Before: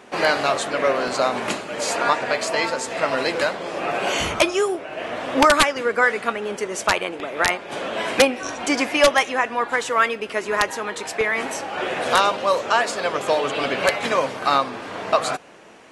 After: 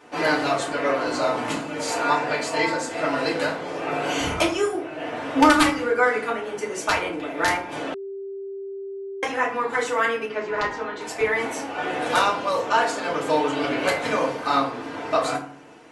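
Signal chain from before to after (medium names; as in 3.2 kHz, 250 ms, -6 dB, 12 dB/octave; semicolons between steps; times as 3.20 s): 10.25–11.01 s: distance through air 150 m; FDN reverb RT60 0.48 s, low-frequency decay 1.5×, high-frequency decay 0.6×, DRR -5 dB; 7.94–9.23 s: bleep 392 Hz -22 dBFS; trim -8.5 dB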